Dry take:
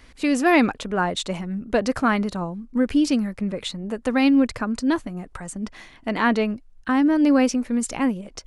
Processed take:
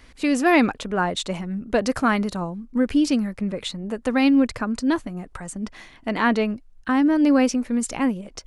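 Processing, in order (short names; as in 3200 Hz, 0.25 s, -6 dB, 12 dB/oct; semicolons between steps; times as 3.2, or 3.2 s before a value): 1.78–2.51 high shelf 6500 Hz +5.5 dB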